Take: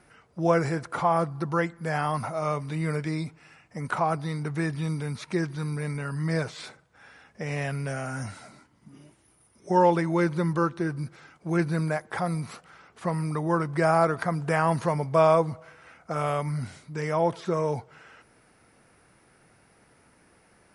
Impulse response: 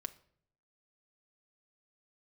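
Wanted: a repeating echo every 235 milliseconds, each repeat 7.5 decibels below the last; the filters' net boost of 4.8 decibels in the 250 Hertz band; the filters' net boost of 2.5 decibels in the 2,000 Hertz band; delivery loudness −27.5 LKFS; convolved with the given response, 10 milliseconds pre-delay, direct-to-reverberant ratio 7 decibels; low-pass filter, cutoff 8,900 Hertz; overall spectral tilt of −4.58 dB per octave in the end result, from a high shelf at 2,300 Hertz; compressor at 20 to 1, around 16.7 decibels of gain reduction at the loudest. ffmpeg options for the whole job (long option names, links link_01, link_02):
-filter_complex "[0:a]lowpass=8900,equalizer=frequency=250:width_type=o:gain=9,equalizer=frequency=2000:width_type=o:gain=4.5,highshelf=frequency=2300:gain=-3,acompressor=threshold=-30dB:ratio=20,aecho=1:1:235|470|705|940|1175:0.422|0.177|0.0744|0.0312|0.0131,asplit=2[link_01][link_02];[1:a]atrim=start_sample=2205,adelay=10[link_03];[link_02][link_03]afir=irnorm=-1:irlink=0,volume=-4.5dB[link_04];[link_01][link_04]amix=inputs=2:normalize=0,volume=8dB"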